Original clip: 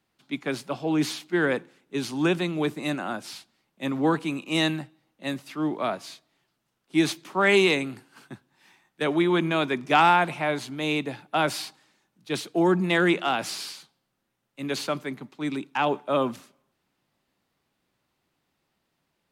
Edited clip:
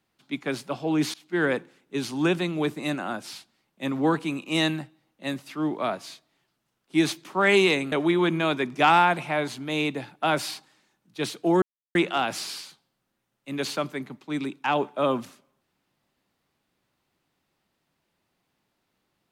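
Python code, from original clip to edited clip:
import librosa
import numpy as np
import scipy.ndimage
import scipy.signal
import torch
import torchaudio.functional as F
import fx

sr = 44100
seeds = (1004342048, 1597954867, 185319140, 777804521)

y = fx.edit(x, sr, fx.fade_in_from(start_s=1.14, length_s=0.28, floor_db=-23.0),
    fx.cut(start_s=7.92, length_s=1.11),
    fx.silence(start_s=12.73, length_s=0.33), tone=tone)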